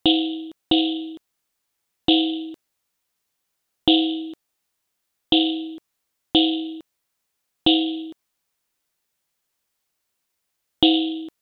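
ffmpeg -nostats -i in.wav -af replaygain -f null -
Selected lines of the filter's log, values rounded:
track_gain = -1.6 dB
track_peak = 0.497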